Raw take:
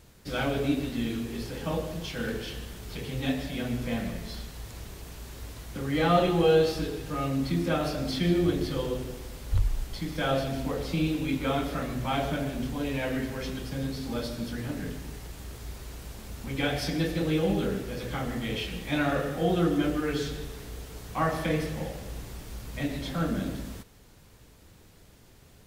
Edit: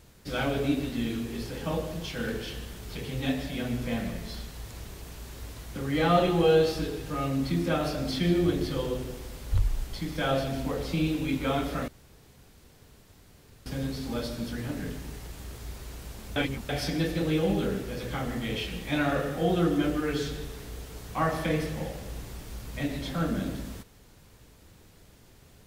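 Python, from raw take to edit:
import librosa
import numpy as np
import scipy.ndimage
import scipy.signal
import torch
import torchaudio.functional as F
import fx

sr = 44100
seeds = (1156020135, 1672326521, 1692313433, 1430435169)

y = fx.edit(x, sr, fx.room_tone_fill(start_s=11.88, length_s=1.78),
    fx.reverse_span(start_s=16.36, length_s=0.33), tone=tone)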